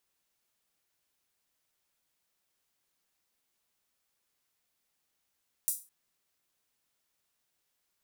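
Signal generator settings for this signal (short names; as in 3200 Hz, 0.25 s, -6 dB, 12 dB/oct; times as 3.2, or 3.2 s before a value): open hi-hat length 0.21 s, high-pass 8700 Hz, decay 0.30 s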